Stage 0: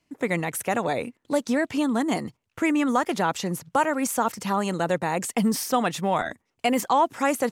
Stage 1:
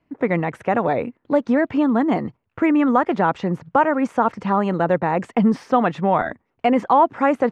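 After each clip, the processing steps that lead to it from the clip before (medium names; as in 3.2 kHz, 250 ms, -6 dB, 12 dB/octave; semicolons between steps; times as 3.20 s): low-pass 1.7 kHz 12 dB/octave; trim +6 dB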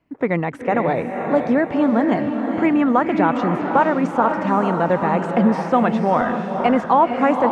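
echo that smears into a reverb 496 ms, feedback 46%, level -5 dB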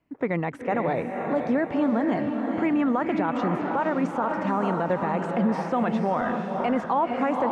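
peak limiter -10 dBFS, peak gain reduction 7 dB; trim -5 dB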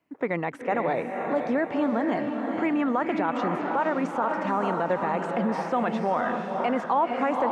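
high-pass 310 Hz 6 dB/octave; trim +1 dB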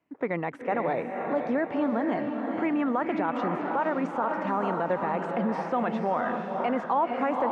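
treble shelf 5.3 kHz -11 dB; trim -1.5 dB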